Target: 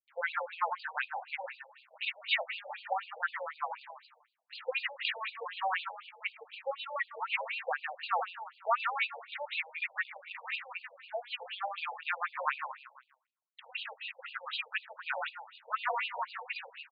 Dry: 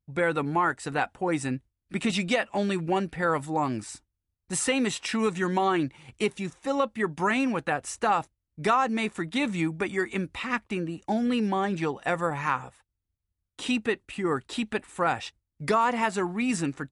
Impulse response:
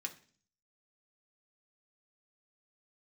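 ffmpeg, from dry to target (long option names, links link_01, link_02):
-filter_complex "[0:a]asplit=5[link_01][link_02][link_03][link_04][link_05];[link_02]adelay=155,afreqshift=32,volume=-7dB[link_06];[link_03]adelay=310,afreqshift=64,volume=-16.9dB[link_07];[link_04]adelay=465,afreqshift=96,volume=-26.8dB[link_08];[link_05]adelay=620,afreqshift=128,volume=-36.7dB[link_09];[link_01][link_06][link_07][link_08][link_09]amix=inputs=5:normalize=0,adynamicequalizer=threshold=0.00631:dfrequency=2700:dqfactor=1.1:tfrequency=2700:tqfactor=1.1:attack=5:release=100:ratio=0.375:range=2.5:mode=boostabove:tftype=bell,acrusher=bits=9:dc=4:mix=0:aa=0.000001,asplit=2[link_10][link_11];[1:a]atrim=start_sample=2205,asetrate=26019,aresample=44100[link_12];[link_11][link_12]afir=irnorm=-1:irlink=0,volume=-13dB[link_13];[link_10][link_13]amix=inputs=2:normalize=0,afftfilt=real='re*between(b*sr/1024,640*pow(3500/640,0.5+0.5*sin(2*PI*4*pts/sr))/1.41,640*pow(3500/640,0.5+0.5*sin(2*PI*4*pts/sr))*1.41)':imag='im*between(b*sr/1024,640*pow(3500/640,0.5+0.5*sin(2*PI*4*pts/sr))/1.41,640*pow(3500/640,0.5+0.5*sin(2*PI*4*pts/sr))*1.41)':win_size=1024:overlap=0.75,volume=-4dB"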